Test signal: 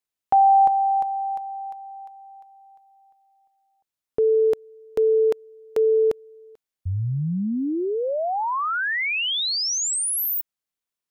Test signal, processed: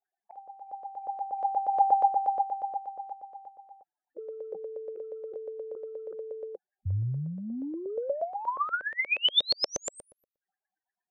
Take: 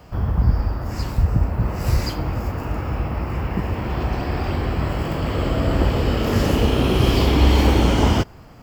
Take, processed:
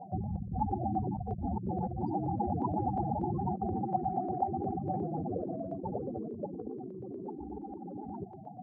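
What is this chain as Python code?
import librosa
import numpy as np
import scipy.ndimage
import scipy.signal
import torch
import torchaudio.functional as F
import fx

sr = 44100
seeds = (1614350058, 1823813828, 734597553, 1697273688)

y = fx.cabinet(x, sr, low_hz=140.0, low_slope=12, high_hz=6900.0, hz=(190.0, 360.0, 770.0, 1700.0, 3300.0), db=(5, 4, 8, 6, -7))
y = fx.spec_topn(y, sr, count=8)
y = fx.over_compress(y, sr, threshold_db=-31.0, ratio=-1.0)
y = fx.filter_lfo_lowpass(y, sr, shape='saw_up', hz=8.4, low_hz=510.0, high_hz=5400.0, q=4.2)
y = y * 10.0 ** (-6.5 / 20.0)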